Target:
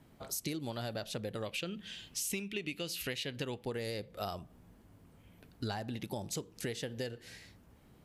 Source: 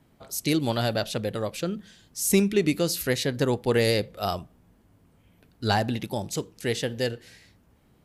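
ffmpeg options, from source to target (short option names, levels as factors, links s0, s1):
-filter_complex "[0:a]asettb=1/sr,asplit=3[s0][s1][s2];[s0]atrim=end=1.424[s3];[s1]atrim=start=1.42:end=3.64,asetpts=PTS-STARTPTS,afade=t=in:d=0.004:c=qsin,afade=t=out:st=2.216:d=0.004:c=qsin,equalizer=f=2800:w=1.7:g=14.5[s4];[s2]atrim=start=3.636[s5];[s3][s4]acrossfade=d=0.004:c1=hsin:c2=qsin[s6];[s6][s5]acrossfade=d=0.004:c1=qsin:c2=hsin,asoftclip=type=hard:threshold=0.422,acompressor=threshold=0.0178:ratio=12"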